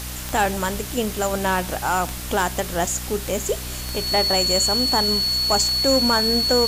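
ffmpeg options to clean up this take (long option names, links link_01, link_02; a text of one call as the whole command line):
ffmpeg -i in.wav -af "adeclick=threshold=4,bandreject=frequency=61.9:width_type=h:width=4,bandreject=frequency=123.8:width_type=h:width=4,bandreject=frequency=185.7:width_type=h:width=4,bandreject=frequency=247.6:width_type=h:width=4,bandreject=frequency=309.5:width_type=h:width=4,bandreject=frequency=4400:width=30,afwtdn=0.022" out.wav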